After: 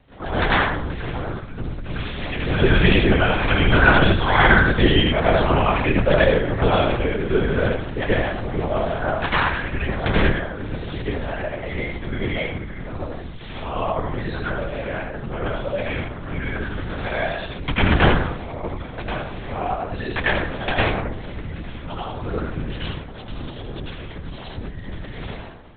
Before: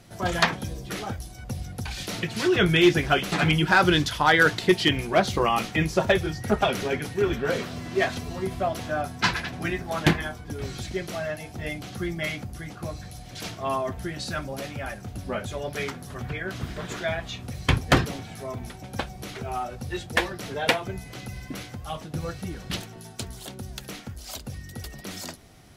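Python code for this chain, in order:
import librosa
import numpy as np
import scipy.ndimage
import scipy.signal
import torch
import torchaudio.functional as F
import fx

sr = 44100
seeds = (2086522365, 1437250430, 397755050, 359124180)

p1 = x + fx.echo_single(x, sr, ms=82, db=-6.5, dry=0)
p2 = fx.rev_plate(p1, sr, seeds[0], rt60_s=0.7, hf_ratio=0.5, predelay_ms=80, drr_db=-7.5)
p3 = fx.lpc_vocoder(p2, sr, seeds[1], excitation='whisper', order=8)
y = p3 * 10.0 ** (-3.5 / 20.0)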